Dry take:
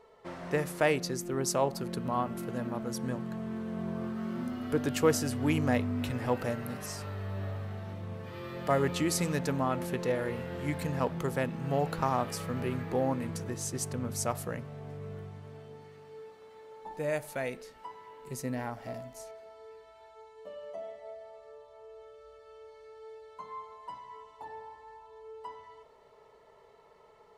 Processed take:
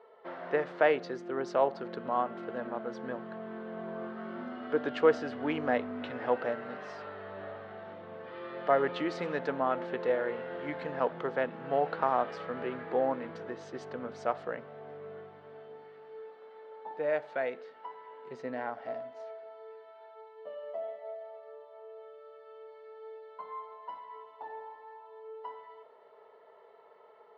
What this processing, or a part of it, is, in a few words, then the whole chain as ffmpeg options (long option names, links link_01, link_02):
phone earpiece: -af "highpass=330,equalizer=frequency=470:width_type=q:width=4:gain=3,equalizer=frequency=690:width_type=q:width=4:gain=4,equalizer=frequency=1500:width_type=q:width=4:gain=4,equalizer=frequency=2500:width_type=q:width=4:gain=-5,lowpass=frequency=3400:width=0.5412,lowpass=frequency=3400:width=1.3066"